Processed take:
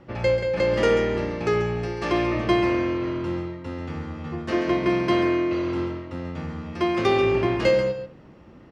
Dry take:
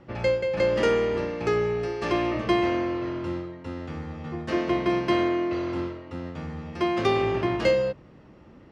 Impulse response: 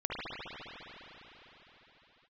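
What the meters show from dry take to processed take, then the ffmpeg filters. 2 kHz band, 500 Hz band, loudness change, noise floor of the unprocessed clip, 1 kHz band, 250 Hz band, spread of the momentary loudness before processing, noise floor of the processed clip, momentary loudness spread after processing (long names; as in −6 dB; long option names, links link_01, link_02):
+2.5 dB, +2.0 dB, +2.0 dB, −51 dBFS, +1.5 dB, +2.5 dB, 13 LU, −48 dBFS, 13 LU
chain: -filter_complex "[0:a]aecho=1:1:138:0.335,asplit=2[link_01][link_02];[1:a]atrim=start_sample=2205,atrim=end_sample=4410[link_03];[link_02][link_03]afir=irnorm=-1:irlink=0,volume=-11.5dB[link_04];[link_01][link_04]amix=inputs=2:normalize=0"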